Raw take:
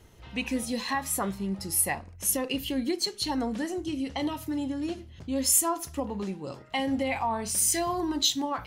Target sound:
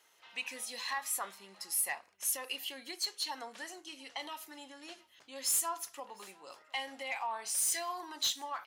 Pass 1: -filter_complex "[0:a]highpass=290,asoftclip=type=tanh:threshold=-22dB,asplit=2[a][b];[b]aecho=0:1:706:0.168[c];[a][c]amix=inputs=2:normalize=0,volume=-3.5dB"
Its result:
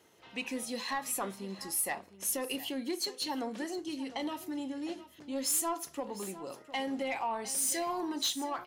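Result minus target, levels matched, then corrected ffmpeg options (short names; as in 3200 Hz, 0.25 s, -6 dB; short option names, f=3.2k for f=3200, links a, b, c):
250 Hz band +16.5 dB; echo-to-direct +12 dB
-filter_complex "[0:a]highpass=960,asoftclip=type=tanh:threshold=-22dB,asplit=2[a][b];[b]aecho=0:1:706:0.0422[c];[a][c]amix=inputs=2:normalize=0,volume=-3.5dB"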